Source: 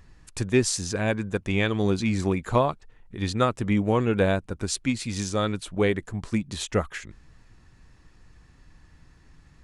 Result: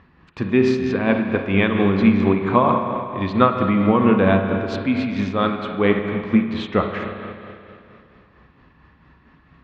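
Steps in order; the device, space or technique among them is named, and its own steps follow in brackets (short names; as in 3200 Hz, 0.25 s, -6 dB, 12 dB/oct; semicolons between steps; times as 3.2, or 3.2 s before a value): combo amplifier with spring reverb and tremolo (spring tank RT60 2.6 s, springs 31/49 ms, chirp 25 ms, DRR 3 dB; tremolo 4.4 Hz, depth 38%; speaker cabinet 85–3400 Hz, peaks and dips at 110 Hz -6 dB, 230 Hz +6 dB, 1100 Hz +7 dB); gain +5.5 dB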